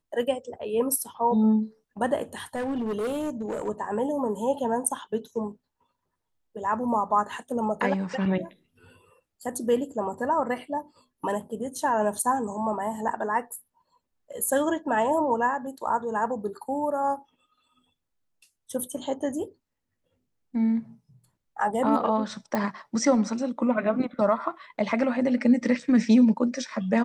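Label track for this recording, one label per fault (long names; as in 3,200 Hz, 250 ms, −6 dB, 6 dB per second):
2.550000	3.690000	clipping −25.5 dBFS
22.550000	22.550000	click −14 dBFS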